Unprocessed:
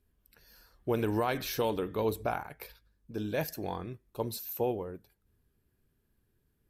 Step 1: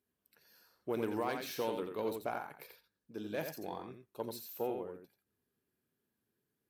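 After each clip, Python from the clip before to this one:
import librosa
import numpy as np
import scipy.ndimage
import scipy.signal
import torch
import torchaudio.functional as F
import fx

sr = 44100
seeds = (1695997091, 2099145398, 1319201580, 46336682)

y = fx.self_delay(x, sr, depth_ms=0.052)
y = scipy.signal.sosfilt(scipy.signal.butter(2, 190.0, 'highpass', fs=sr, output='sos'), y)
y = y + 10.0 ** (-6.5 / 20.0) * np.pad(y, (int(87 * sr / 1000.0), 0))[:len(y)]
y = y * librosa.db_to_amplitude(-6.0)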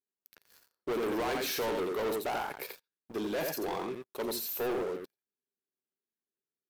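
y = scipy.signal.sosfilt(scipy.signal.bessel(2, 240.0, 'highpass', norm='mag', fs=sr, output='sos'), x)
y = fx.peak_eq(y, sr, hz=390.0, db=5.0, octaves=0.26)
y = fx.leveller(y, sr, passes=5)
y = y * librosa.db_to_amplitude(-5.5)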